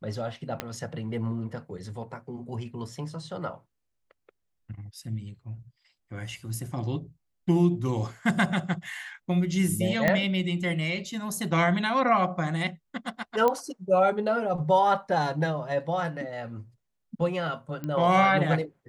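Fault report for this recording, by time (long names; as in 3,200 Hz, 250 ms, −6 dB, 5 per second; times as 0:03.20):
0:00.60: click −14 dBFS
0:10.08: click −9 dBFS
0:13.48: click −12 dBFS
0:17.84: click −21 dBFS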